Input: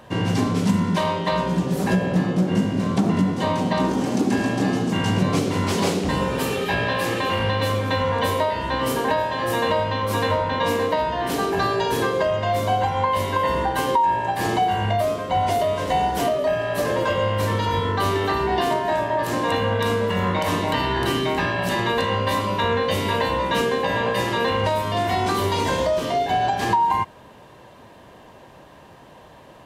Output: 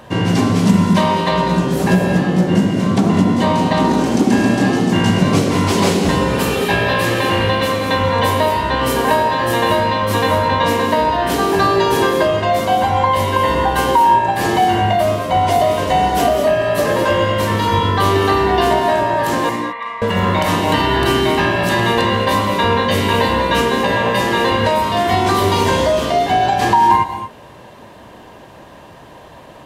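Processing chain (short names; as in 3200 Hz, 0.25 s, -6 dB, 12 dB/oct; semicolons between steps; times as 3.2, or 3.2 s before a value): 19.49–20.02 double band-pass 1500 Hz, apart 0.82 oct; reverb, pre-delay 3 ms, DRR 6 dB; gain +6 dB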